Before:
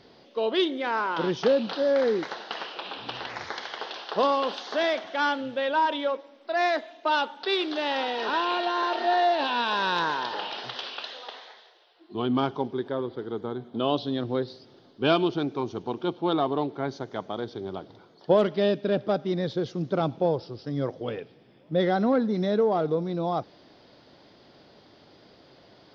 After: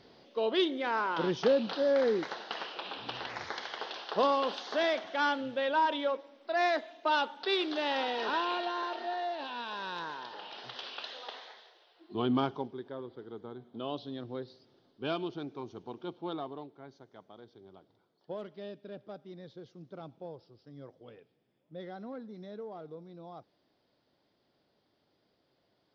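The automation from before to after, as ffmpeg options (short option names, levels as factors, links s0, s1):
-af "volume=2,afade=t=out:st=8.19:d=0.96:silence=0.354813,afade=t=in:st=10.41:d=0.91:silence=0.316228,afade=t=out:st=12.3:d=0.46:silence=0.354813,afade=t=out:st=16.27:d=0.45:silence=0.398107"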